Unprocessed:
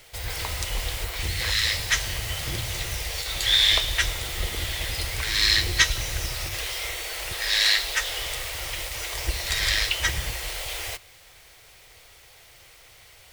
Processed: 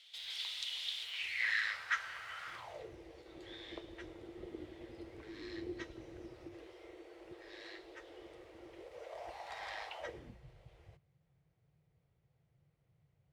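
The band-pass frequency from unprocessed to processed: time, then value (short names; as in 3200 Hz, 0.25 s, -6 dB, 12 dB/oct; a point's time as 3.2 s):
band-pass, Q 5.1
1.01 s 3500 Hz
1.72 s 1400 Hz
2.53 s 1400 Hz
2.93 s 330 Hz
8.68 s 330 Hz
9.36 s 800 Hz
9.97 s 800 Hz
10.4 s 150 Hz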